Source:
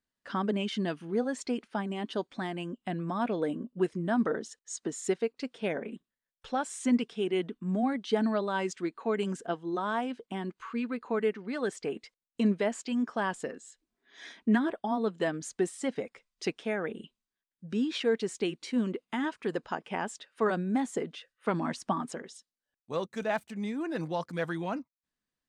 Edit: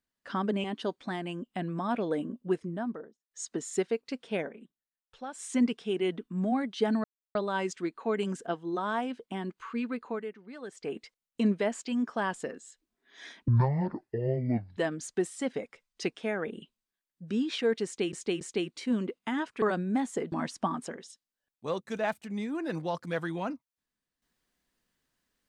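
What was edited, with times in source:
0.64–1.95 cut
3.67–4.62 studio fade out
5.71–6.75 dip -9.5 dB, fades 0.12 s
8.35 insert silence 0.31 s
11.01–11.95 dip -10.5 dB, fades 0.24 s
14.48–15.19 speed 55%
18.27–18.55 loop, 3 plays
19.48–20.42 cut
21.12–21.58 cut

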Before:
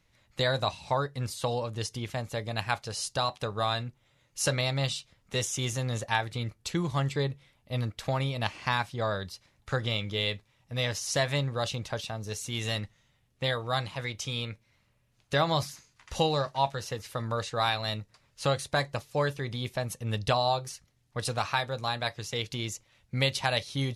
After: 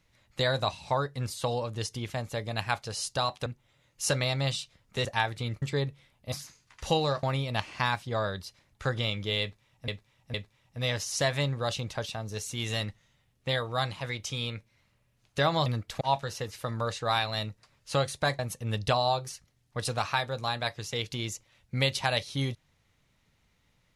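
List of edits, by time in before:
3.46–3.83 cut
5.42–6 cut
6.57–7.05 cut
7.75–8.1 swap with 15.61–16.52
10.29–10.75 loop, 3 plays
18.9–19.79 cut

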